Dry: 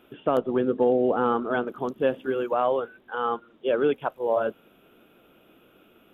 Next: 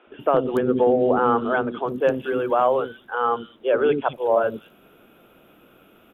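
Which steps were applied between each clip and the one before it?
three-band delay without the direct sound mids, lows, highs 70/200 ms, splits 340/3,200 Hz
level +5.5 dB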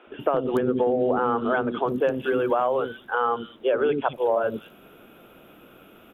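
downward compressor, threshold −22 dBFS, peak gain reduction 8.5 dB
level +3 dB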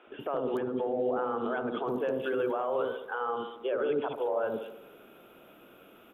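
brickwall limiter −18.5 dBFS, peak gain reduction 9.5 dB
low-shelf EQ 180 Hz −7 dB
delay with a band-pass on its return 68 ms, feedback 58%, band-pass 580 Hz, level −6 dB
level −4.5 dB

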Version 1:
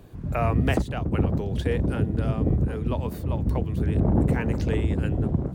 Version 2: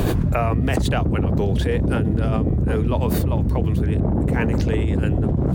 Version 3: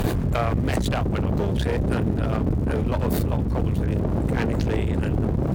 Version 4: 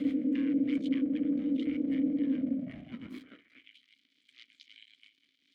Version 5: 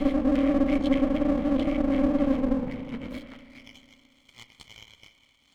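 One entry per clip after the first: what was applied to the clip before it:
envelope flattener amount 100%; level −1 dB
surface crackle 350 per second −40 dBFS; asymmetric clip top −28.5 dBFS
high-pass filter sweep 91 Hz → 4,000 Hz, 0:02.34–0:03.85; ring modulation 390 Hz; formant filter i
lower of the sound and its delayed copy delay 0.92 ms; convolution reverb RT60 2.6 s, pre-delay 34 ms, DRR 10.5 dB; level +8 dB

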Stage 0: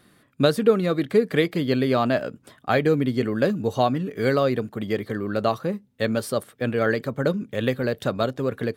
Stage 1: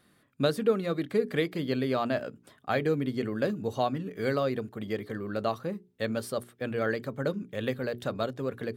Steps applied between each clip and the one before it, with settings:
mains-hum notches 60/120/180/240/300/360/420 Hz
level −7 dB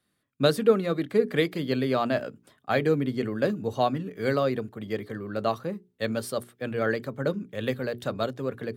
multiband upward and downward expander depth 40%
level +3 dB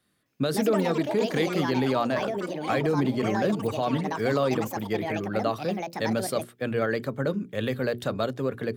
brickwall limiter −19.5 dBFS, peak gain reduction 11.5 dB
delay with pitch and tempo change per echo 259 ms, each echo +6 semitones, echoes 2, each echo −6 dB
level +3.5 dB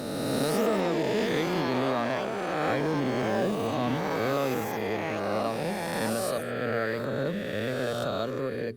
peak hold with a rise ahead of every peak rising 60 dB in 2.54 s
level −6.5 dB
Opus 48 kbit/s 48,000 Hz

